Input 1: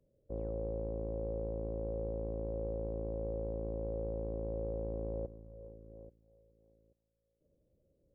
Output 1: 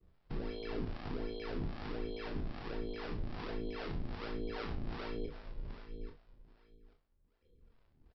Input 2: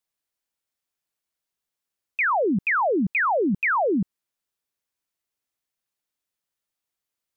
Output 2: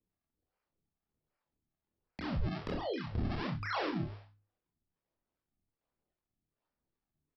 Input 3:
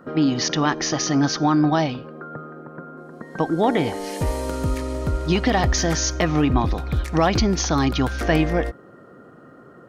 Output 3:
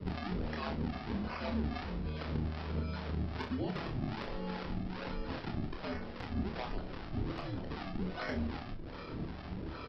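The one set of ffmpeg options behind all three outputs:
-filter_complex "[0:a]bandreject=f=60:t=h:w=6,bandreject=f=120:t=h:w=6,bandreject=f=180:t=h:w=6,bandreject=f=240:t=h:w=6,bandreject=f=300:t=h:w=6,bandreject=f=360:t=h:w=6,afreqshift=-78,lowshelf=f=99:g=11,acrossover=split=470|1600[s0][s1][s2];[s0]acompressor=threshold=0.0316:ratio=4[s3];[s1]acompressor=threshold=0.00891:ratio=4[s4];[s2]acompressor=threshold=0.0141:ratio=4[s5];[s3][s4][s5]amix=inputs=3:normalize=0,acrossover=split=150|2000[s6][s7][s8];[s6]alimiter=level_in=4.22:limit=0.0631:level=0:latency=1,volume=0.237[s9];[s9][s7][s8]amix=inputs=3:normalize=0,acompressor=threshold=0.0141:ratio=4,aresample=11025,acrusher=samples=13:mix=1:aa=0.000001:lfo=1:lforange=20.8:lforate=1.3,aresample=44100,volume=28.2,asoftclip=hard,volume=0.0355,lowpass=f=3800:p=1,acrossover=split=510[s10][s11];[s10]aeval=exprs='val(0)*(1-0.7/2+0.7/2*cos(2*PI*2.5*n/s))':c=same[s12];[s11]aeval=exprs='val(0)*(1-0.7/2-0.7/2*cos(2*PI*2.5*n/s))':c=same[s13];[s12][s13]amix=inputs=2:normalize=0,asplit=2[s14][s15];[s15]adelay=27,volume=0.562[s16];[s14][s16]amix=inputs=2:normalize=0,aecho=1:1:39|60:0.335|0.178,volume=1.58"

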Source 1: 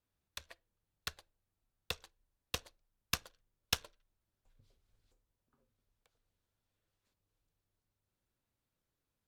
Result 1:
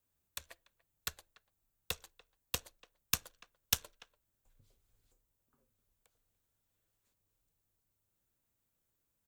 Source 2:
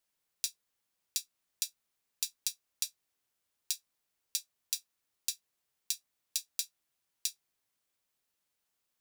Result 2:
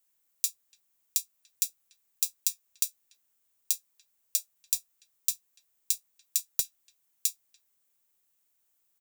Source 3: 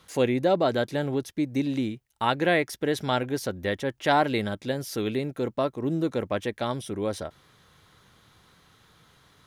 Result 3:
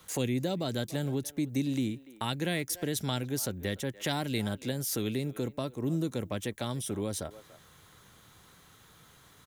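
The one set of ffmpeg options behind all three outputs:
-filter_complex "[0:a]asplit=2[s0][s1];[s1]adelay=290,highpass=300,lowpass=3400,asoftclip=type=hard:threshold=0.126,volume=0.0891[s2];[s0][s2]amix=inputs=2:normalize=0,acrossover=split=240|3000[s3][s4][s5];[s4]acompressor=threshold=0.0178:ratio=6[s6];[s3][s6][s5]amix=inputs=3:normalize=0,aexciter=amount=3.2:drive=1.5:freq=6600"

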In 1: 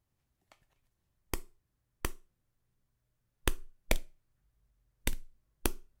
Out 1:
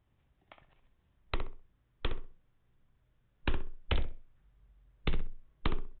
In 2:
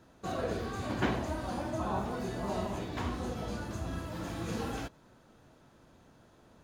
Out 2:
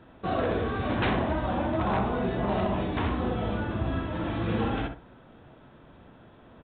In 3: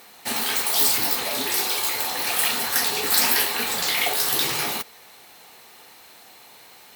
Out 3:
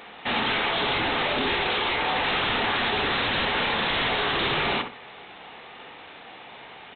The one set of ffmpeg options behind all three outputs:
-filter_complex "[0:a]aresample=8000,aeval=exprs='0.0422*(abs(mod(val(0)/0.0422+3,4)-2)-1)':c=same,aresample=44100,asplit=2[s0][s1];[s1]adelay=64,lowpass=f=1400:p=1,volume=0.531,asplit=2[s2][s3];[s3]adelay=64,lowpass=f=1400:p=1,volume=0.29,asplit=2[s4][s5];[s5]adelay=64,lowpass=f=1400:p=1,volume=0.29,asplit=2[s6][s7];[s7]adelay=64,lowpass=f=1400:p=1,volume=0.29[s8];[s0][s2][s4][s6][s8]amix=inputs=5:normalize=0,volume=2.24"

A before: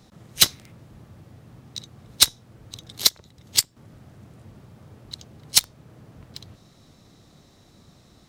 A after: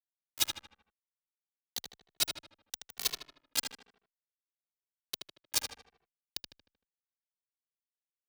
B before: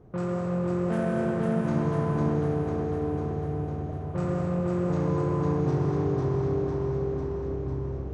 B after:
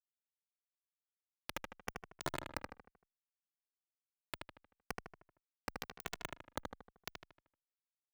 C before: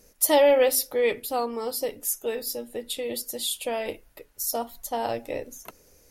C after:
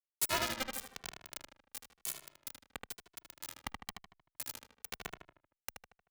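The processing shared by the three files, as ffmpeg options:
-filter_complex "[0:a]afftfilt=real='real(if(between(b,1,1008),(2*floor((b-1)/24)+1)*24-b,b),0)':imag='imag(if(between(b,1,1008),(2*floor((b-1)/24)+1)*24-b,b),0)*if(between(b,1,1008),-1,1)':win_size=2048:overlap=0.75,acompressor=threshold=0.00891:ratio=3,acrusher=bits=4:mix=0:aa=0.000001,asplit=2[s0][s1];[s1]adelay=77,lowpass=f=3200:p=1,volume=0.668,asplit=2[s2][s3];[s3]adelay=77,lowpass=f=3200:p=1,volume=0.49,asplit=2[s4][s5];[s5]adelay=77,lowpass=f=3200:p=1,volume=0.49,asplit=2[s6][s7];[s7]adelay=77,lowpass=f=3200:p=1,volume=0.49,asplit=2[s8][s9];[s9]adelay=77,lowpass=f=3200:p=1,volume=0.49,asplit=2[s10][s11];[s11]adelay=77,lowpass=f=3200:p=1,volume=0.49[s12];[s2][s4][s6][s8][s10][s12]amix=inputs=6:normalize=0[s13];[s0][s13]amix=inputs=2:normalize=0,asplit=2[s14][s15];[s15]adelay=2.2,afreqshift=-1[s16];[s14][s16]amix=inputs=2:normalize=1,volume=2.24"

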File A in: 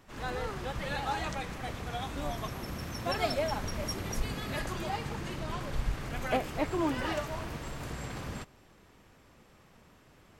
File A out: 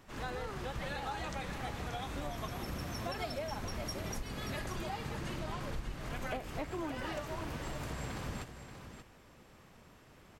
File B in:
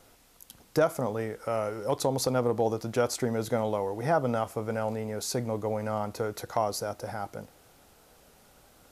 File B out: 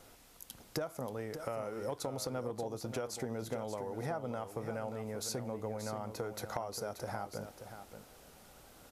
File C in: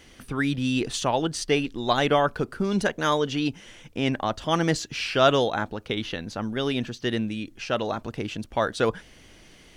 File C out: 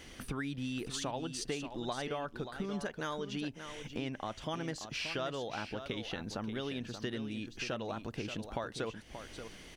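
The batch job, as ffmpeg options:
-af "acompressor=threshold=0.0158:ratio=6,aecho=1:1:581:0.335"

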